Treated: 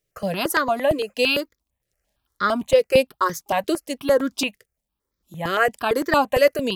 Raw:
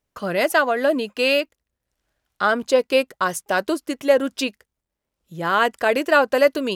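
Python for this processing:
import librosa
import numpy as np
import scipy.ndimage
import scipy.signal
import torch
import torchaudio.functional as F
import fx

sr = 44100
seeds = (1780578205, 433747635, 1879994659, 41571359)

y = fx.high_shelf(x, sr, hz=11000.0, db=3.5)
y = fx.notch(y, sr, hz=1500.0, q=13.0)
y = fx.phaser_held(y, sr, hz=8.8, low_hz=240.0, high_hz=2800.0)
y = y * 10.0 ** (2.5 / 20.0)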